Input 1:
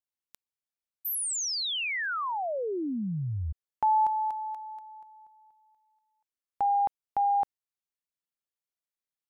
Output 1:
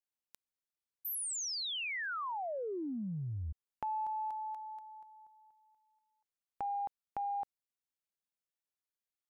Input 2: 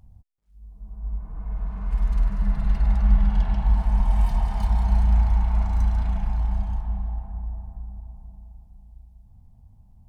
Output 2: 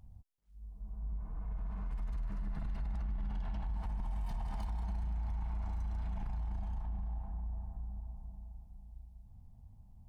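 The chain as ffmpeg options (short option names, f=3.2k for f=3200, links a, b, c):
-af "acompressor=threshold=-31dB:ratio=6:attack=3:release=36:knee=6:detection=peak,volume=-4.5dB"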